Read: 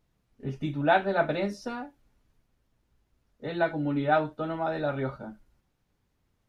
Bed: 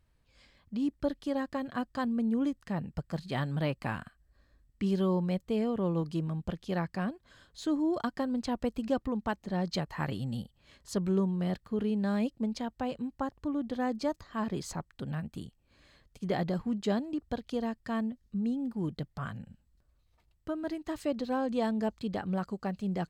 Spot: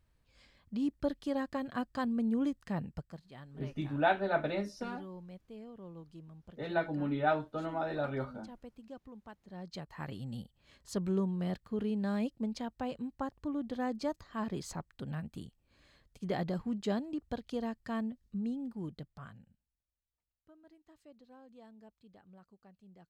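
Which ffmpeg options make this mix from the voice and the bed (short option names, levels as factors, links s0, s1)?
-filter_complex "[0:a]adelay=3150,volume=0.531[s0];[1:a]volume=4.47,afade=t=out:st=2.83:d=0.38:silence=0.149624,afade=t=in:st=9.4:d=1.35:silence=0.177828,afade=t=out:st=18.27:d=1.49:silence=0.0794328[s1];[s0][s1]amix=inputs=2:normalize=0"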